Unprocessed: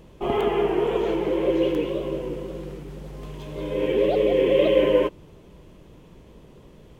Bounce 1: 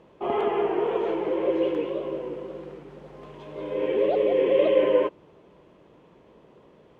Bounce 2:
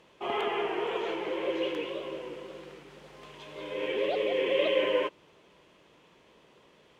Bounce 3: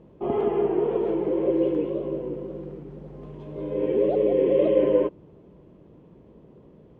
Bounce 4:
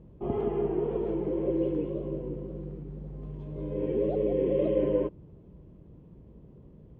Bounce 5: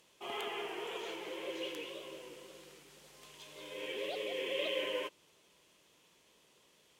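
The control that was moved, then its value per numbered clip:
band-pass filter, frequency: 850 Hz, 2.3 kHz, 290 Hz, 110 Hz, 7.7 kHz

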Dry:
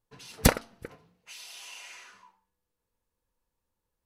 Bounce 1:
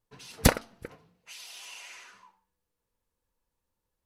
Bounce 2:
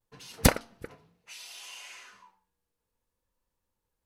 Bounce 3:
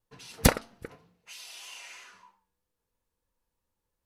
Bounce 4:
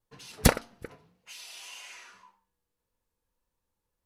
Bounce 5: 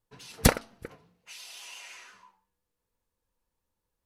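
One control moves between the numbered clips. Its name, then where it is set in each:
vibrato, rate: 13 Hz, 0.67 Hz, 3.1 Hz, 1.8 Hz, 5.8 Hz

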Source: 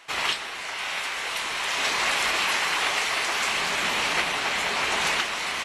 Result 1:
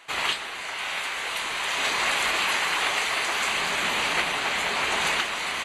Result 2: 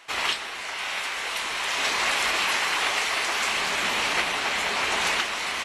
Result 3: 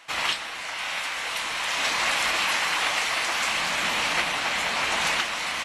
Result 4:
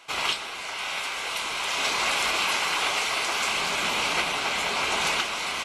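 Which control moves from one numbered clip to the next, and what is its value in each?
band-stop, frequency: 5.4 kHz, 150 Hz, 400 Hz, 1.8 kHz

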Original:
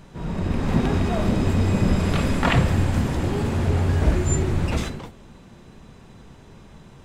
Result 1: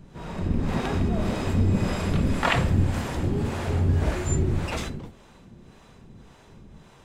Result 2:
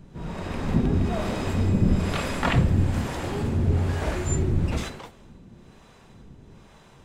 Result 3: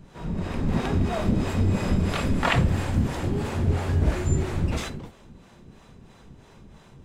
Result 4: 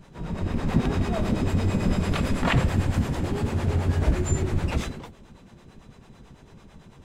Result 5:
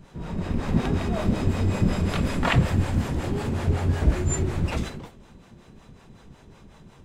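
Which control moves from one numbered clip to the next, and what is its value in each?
harmonic tremolo, rate: 1.8 Hz, 1.1 Hz, 3 Hz, 9 Hz, 5.4 Hz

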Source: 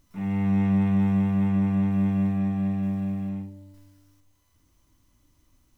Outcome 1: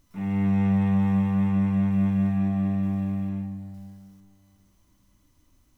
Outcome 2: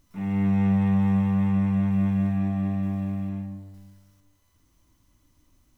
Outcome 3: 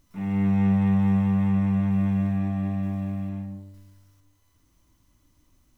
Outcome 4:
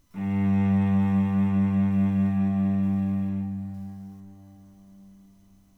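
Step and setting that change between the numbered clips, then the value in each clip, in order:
plate-style reverb, RT60: 2.5 s, 1.2 s, 0.56 s, 5.2 s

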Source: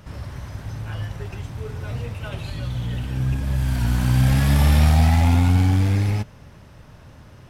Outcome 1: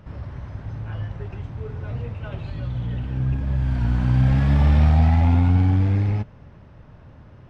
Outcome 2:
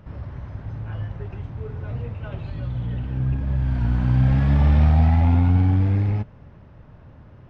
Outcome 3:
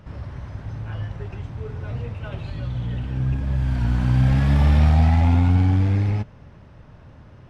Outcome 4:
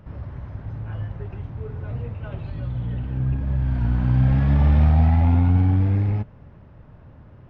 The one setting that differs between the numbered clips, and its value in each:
tape spacing loss, at 10 kHz: 28 dB, 37 dB, 20 dB, 46 dB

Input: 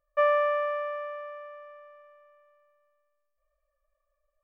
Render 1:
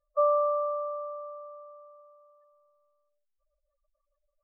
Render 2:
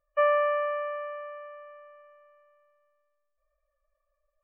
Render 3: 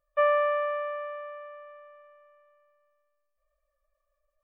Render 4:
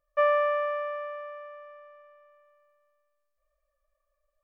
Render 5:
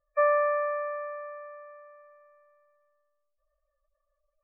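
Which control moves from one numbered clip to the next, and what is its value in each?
spectral gate, under each frame's peak: -10 dB, -35 dB, -45 dB, -60 dB, -20 dB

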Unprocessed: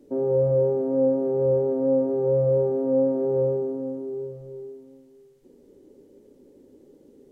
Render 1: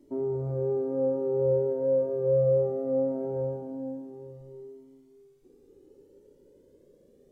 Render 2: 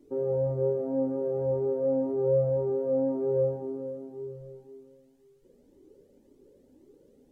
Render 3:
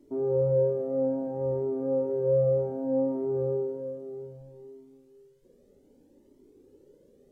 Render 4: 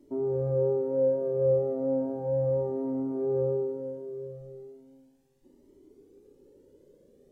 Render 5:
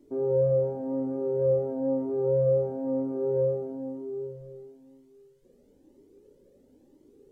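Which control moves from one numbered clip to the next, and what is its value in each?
Shepard-style flanger, rate: 0.21 Hz, 1.9 Hz, 0.63 Hz, 0.35 Hz, 1 Hz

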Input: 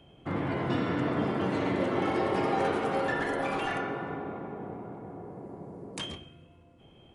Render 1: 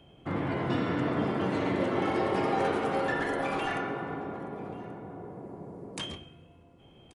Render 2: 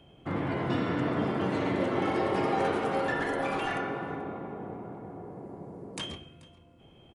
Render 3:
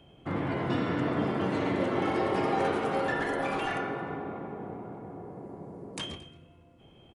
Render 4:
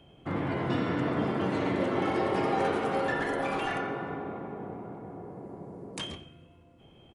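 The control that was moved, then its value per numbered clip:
delay, time: 1132 ms, 434 ms, 224 ms, 87 ms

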